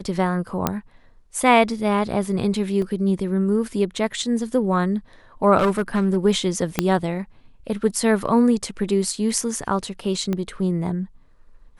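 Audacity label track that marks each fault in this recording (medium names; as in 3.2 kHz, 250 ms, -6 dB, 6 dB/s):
0.670000	0.670000	pop -5 dBFS
2.820000	2.820000	dropout 2.8 ms
5.570000	6.180000	clipped -14.5 dBFS
6.790000	6.790000	pop -3 dBFS
10.330000	10.330000	pop -13 dBFS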